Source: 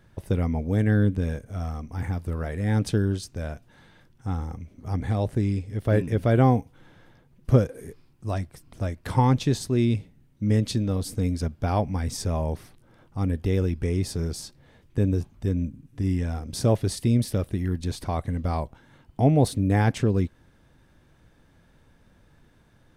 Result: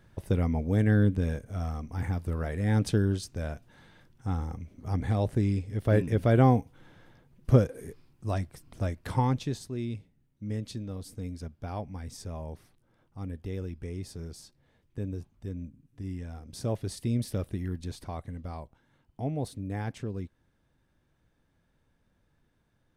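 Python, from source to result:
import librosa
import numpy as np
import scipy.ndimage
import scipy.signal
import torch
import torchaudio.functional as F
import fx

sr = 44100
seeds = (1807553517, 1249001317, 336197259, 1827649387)

y = fx.gain(x, sr, db=fx.line((8.9, -2.0), (9.74, -12.0), (16.29, -12.0), (17.46, -5.5), (18.6, -13.0)))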